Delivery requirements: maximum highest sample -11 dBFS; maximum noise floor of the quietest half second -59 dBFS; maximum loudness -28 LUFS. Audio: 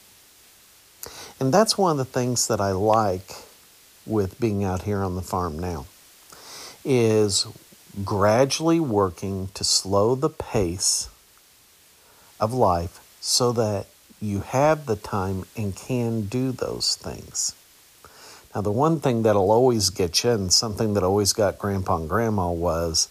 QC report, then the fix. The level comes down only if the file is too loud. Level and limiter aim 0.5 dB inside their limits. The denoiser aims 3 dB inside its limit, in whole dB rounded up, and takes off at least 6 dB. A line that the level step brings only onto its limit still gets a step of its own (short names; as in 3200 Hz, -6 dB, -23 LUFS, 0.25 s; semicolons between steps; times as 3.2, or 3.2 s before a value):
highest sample -5.0 dBFS: fail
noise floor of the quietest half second -55 dBFS: fail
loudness -22.5 LUFS: fail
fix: gain -6 dB; limiter -11.5 dBFS